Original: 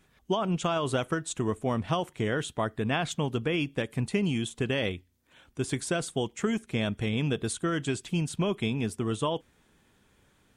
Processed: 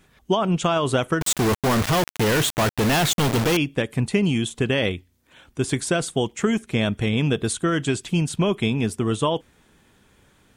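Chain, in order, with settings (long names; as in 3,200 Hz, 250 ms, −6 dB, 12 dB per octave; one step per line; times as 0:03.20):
0:01.21–0:03.57: log-companded quantiser 2 bits
level +7 dB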